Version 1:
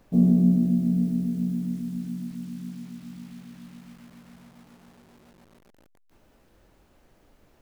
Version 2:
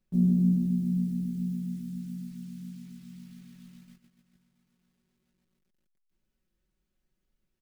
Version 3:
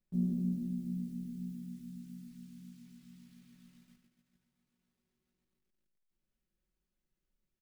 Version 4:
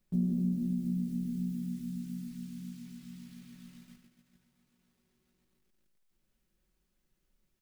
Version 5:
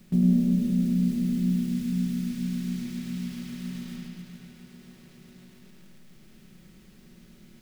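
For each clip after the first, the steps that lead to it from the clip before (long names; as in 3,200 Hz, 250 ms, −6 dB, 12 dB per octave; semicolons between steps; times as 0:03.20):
parametric band 730 Hz −14 dB 1.9 octaves; noise gate −49 dBFS, range −14 dB; comb filter 5.4 ms, depth 67%; level −5.5 dB
single-tap delay 75 ms −8 dB; level −7.5 dB
downward compressor 2 to 1, threshold −40 dBFS, peak gain reduction 7 dB; level +8.5 dB
compressor on every frequency bin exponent 0.6; parametric band 2,000 Hz +4.5 dB 2.7 octaves; on a send: bucket-brigade delay 104 ms, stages 4,096, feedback 68%, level −4 dB; on the sum: level +6.5 dB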